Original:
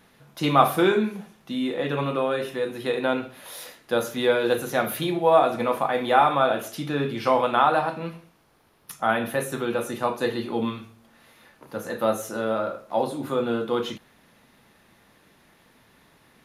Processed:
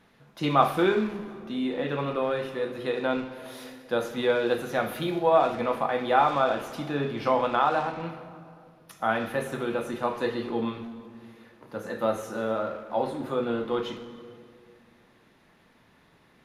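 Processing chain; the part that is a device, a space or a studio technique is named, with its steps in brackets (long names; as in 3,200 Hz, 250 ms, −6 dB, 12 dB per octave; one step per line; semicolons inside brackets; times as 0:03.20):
0:07.57–0:08.01: Chebyshev low-pass filter 9,000 Hz
high-shelf EQ 7,300 Hz −12 dB
saturated reverb return (on a send at −7 dB: convolution reverb RT60 1.9 s, pre-delay 46 ms + soft clipping −26.5 dBFS, distortion −7 dB)
on the sum: level −3 dB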